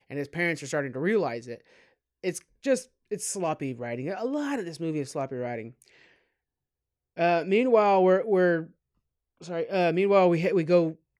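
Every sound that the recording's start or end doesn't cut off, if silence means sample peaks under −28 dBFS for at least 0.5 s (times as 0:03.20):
0:02.25–0:05.62
0:07.19–0:08.61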